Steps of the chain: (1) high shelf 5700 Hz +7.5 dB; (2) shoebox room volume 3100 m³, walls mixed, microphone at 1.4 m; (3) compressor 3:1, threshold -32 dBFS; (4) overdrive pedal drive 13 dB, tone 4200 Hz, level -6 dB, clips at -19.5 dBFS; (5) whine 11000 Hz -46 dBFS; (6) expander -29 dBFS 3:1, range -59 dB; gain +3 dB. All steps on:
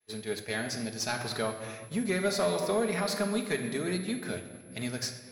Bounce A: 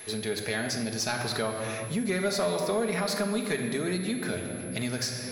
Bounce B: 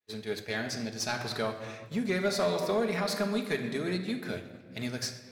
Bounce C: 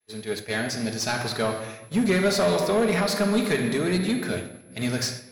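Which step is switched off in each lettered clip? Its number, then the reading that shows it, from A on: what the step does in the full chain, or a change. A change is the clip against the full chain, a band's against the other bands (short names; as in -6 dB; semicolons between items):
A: 6, momentary loudness spread change -4 LU; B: 5, 8 kHz band -2.5 dB; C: 3, mean gain reduction 5.0 dB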